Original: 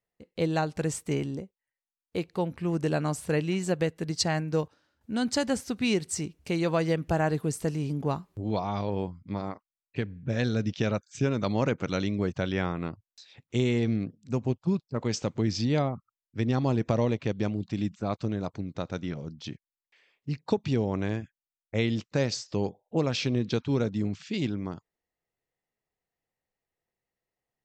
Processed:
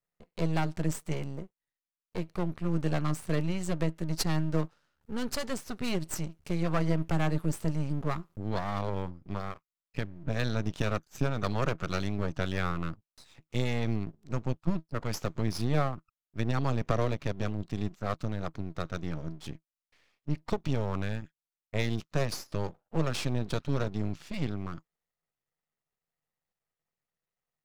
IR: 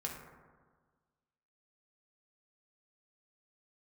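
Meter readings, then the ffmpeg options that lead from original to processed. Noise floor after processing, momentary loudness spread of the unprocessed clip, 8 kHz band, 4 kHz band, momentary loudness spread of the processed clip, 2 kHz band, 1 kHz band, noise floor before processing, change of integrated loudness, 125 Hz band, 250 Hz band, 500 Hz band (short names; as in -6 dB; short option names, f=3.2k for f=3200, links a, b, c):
under -85 dBFS, 10 LU, -4.5 dB, -4.5 dB, 10 LU, -2.5 dB, -2.0 dB, under -85 dBFS, -3.5 dB, -1.5 dB, -4.5 dB, -5.5 dB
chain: -af "equalizer=f=160:t=o:w=0.33:g=8,equalizer=f=315:t=o:w=0.33:g=-9,equalizer=f=1.25k:t=o:w=0.33:g=7,aeval=exprs='max(val(0),0)':c=same"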